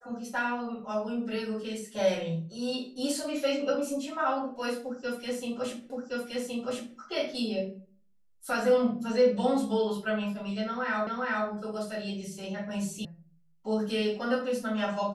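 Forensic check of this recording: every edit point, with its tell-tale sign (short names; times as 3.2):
5.9 repeat of the last 1.07 s
11.07 repeat of the last 0.41 s
13.05 sound cut off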